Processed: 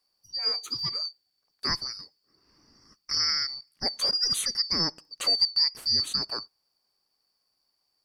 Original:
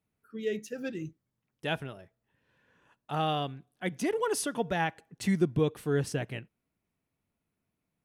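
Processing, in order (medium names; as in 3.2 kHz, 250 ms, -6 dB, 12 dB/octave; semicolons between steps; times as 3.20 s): four frequency bands reordered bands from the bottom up 2341; in parallel at +2.5 dB: compression, threshold -37 dBFS, peak gain reduction 16 dB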